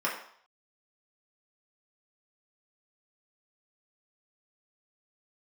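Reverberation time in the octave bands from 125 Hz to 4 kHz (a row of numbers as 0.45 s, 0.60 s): 0.35 s, 0.45 s, 0.55 s, 0.65 s, 0.55 s, 0.55 s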